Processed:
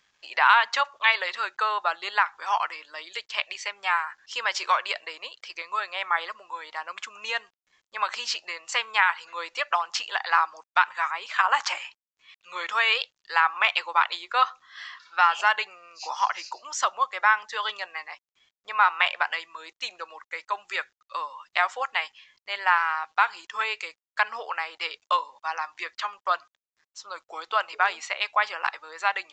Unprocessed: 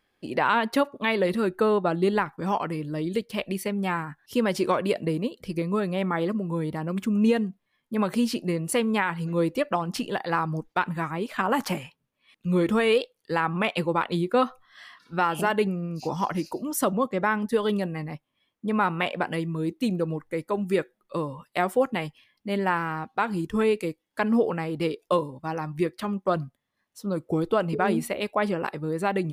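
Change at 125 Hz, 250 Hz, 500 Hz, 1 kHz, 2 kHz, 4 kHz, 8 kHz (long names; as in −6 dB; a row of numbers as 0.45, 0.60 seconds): below −40 dB, below −30 dB, −13.5 dB, +4.0 dB, +7.0 dB, +7.0 dB, +0.5 dB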